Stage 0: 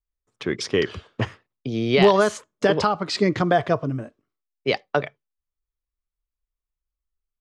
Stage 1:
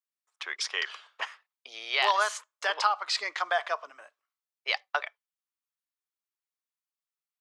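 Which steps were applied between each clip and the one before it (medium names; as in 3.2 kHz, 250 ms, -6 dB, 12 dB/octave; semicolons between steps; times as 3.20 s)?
high-pass 840 Hz 24 dB/octave; trim -1.5 dB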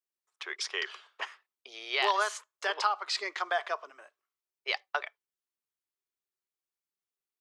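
peaking EQ 380 Hz +12 dB 0.32 oct; trim -3 dB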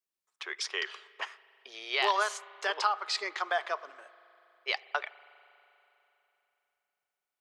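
spring tank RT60 3.3 s, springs 40 ms, chirp 60 ms, DRR 19 dB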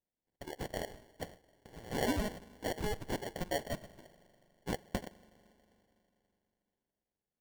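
sample-and-hold 35×; trim -5 dB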